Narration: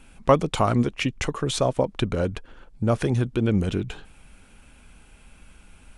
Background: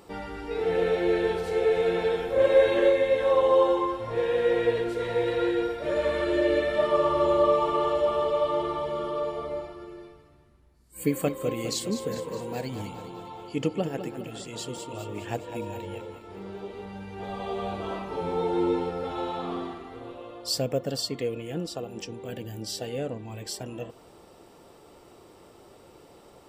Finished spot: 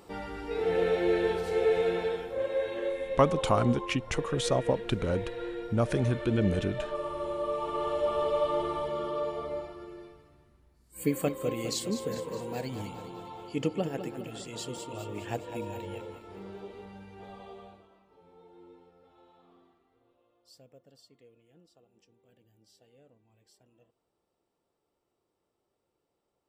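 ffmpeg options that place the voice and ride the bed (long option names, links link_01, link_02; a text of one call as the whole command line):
ffmpeg -i stem1.wav -i stem2.wav -filter_complex "[0:a]adelay=2900,volume=-5dB[link_01];[1:a]volume=7dB,afade=type=out:start_time=1.75:duration=0.72:silence=0.334965,afade=type=in:start_time=7.44:duration=0.85:silence=0.354813,afade=type=out:start_time=16.12:duration=1.76:silence=0.0473151[link_02];[link_01][link_02]amix=inputs=2:normalize=0" out.wav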